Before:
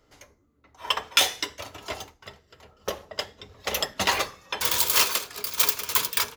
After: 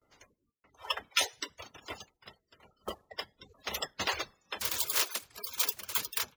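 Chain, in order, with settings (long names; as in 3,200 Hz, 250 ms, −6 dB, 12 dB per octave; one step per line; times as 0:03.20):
spectral magnitudes quantised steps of 30 dB
noise gate with hold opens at −57 dBFS
reverb reduction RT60 0.71 s
level −7.5 dB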